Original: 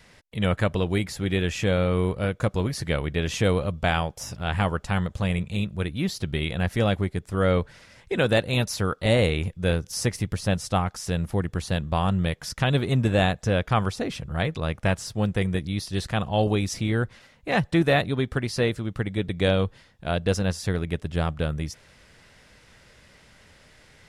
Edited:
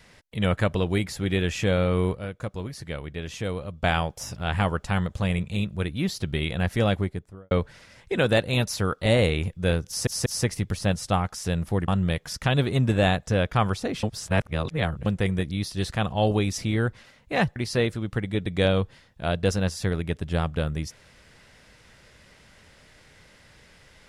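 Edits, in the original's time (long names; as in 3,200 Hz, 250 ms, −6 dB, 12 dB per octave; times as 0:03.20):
0:02.16–0:03.83: clip gain −8 dB
0:06.94–0:07.51: fade out and dull
0:09.88: stutter 0.19 s, 3 plays
0:11.50–0:12.04: remove
0:14.19–0:15.22: reverse
0:17.72–0:18.39: remove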